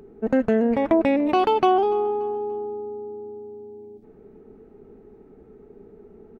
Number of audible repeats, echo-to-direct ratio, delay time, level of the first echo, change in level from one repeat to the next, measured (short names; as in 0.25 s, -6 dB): 2, -21.5 dB, 0.29 s, -22.0 dB, -8.0 dB